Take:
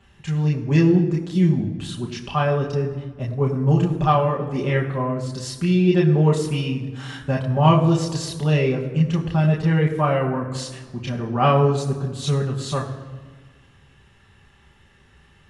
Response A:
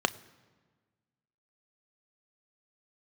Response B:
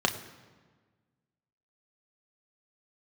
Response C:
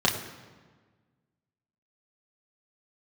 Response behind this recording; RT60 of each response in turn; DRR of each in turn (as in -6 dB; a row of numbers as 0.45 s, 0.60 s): C; 1.5 s, 1.5 s, 1.5 s; 13.0 dB, 3.5 dB, -2.5 dB